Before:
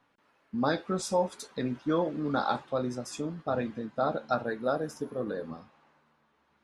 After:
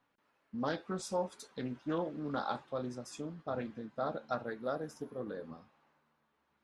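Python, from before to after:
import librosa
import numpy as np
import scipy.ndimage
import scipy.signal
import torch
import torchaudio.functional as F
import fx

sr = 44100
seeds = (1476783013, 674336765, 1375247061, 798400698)

y = fx.doppler_dist(x, sr, depth_ms=0.17)
y = y * 10.0 ** (-7.5 / 20.0)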